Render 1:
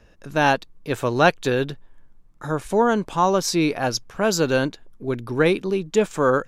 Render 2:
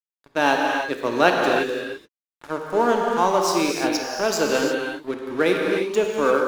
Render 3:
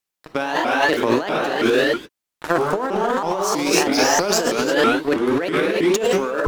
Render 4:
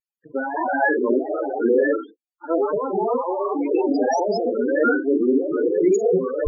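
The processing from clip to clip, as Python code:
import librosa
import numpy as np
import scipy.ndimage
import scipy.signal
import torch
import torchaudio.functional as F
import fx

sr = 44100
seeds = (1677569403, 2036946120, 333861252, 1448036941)

y1 = scipy.signal.sosfilt(scipy.signal.butter(4, 220.0, 'highpass', fs=sr, output='sos'), x)
y1 = np.sign(y1) * np.maximum(np.abs(y1) - 10.0 ** (-34.0 / 20.0), 0.0)
y1 = fx.rev_gated(y1, sr, seeds[0], gate_ms=370, shape='flat', drr_db=0.0)
y1 = y1 * librosa.db_to_amplitude(-1.0)
y2 = fx.over_compress(y1, sr, threshold_db=-27.0, ratio=-1.0)
y2 = fx.vibrato_shape(y2, sr, shape='saw_up', rate_hz=3.1, depth_cents=250.0)
y2 = y2 * librosa.db_to_amplitude(7.5)
y3 = fx.room_early_taps(y2, sr, ms=(44, 71), db=(-6.5, -12.5))
y3 = fx.spec_topn(y3, sr, count=8)
y3 = fx.vibrato(y3, sr, rate_hz=1.9, depth_cents=56.0)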